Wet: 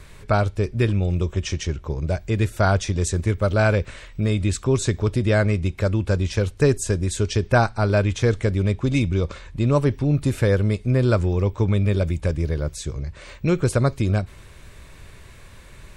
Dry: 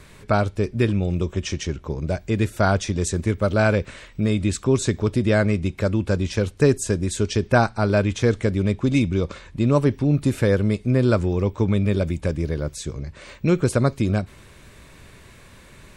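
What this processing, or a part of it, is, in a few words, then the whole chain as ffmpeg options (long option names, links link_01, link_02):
low shelf boost with a cut just above: -af "lowshelf=frequency=82:gain=8,equalizer=frequency=230:width_type=o:width=1.1:gain=-4.5"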